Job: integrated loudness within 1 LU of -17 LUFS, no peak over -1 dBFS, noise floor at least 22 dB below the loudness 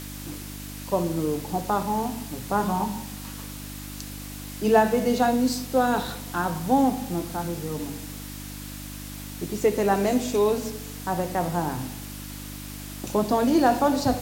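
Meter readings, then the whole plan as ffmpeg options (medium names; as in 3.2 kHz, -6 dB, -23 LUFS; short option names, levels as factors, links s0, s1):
hum 50 Hz; highest harmonic 300 Hz; hum level -37 dBFS; noise floor -37 dBFS; noise floor target -47 dBFS; loudness -25.0 LUFS; peak level -7.0 dBFS; loudness target -17.0 LUFS
-> -af "bandreject=f=50:t=h:w=4,bandreject=f=100:t=h:w=4,bandreject=f=150:t=h:w=4,bandreject=f=200:t=h:w=4,bandreject=f=250:t=h:w=4,bandreject=f=300:t=h:w=4"
-af "afftdn=nr=10:nf=-37"
-af "volume=2.51,alimiter=limit=0.891:level=0:latency=1"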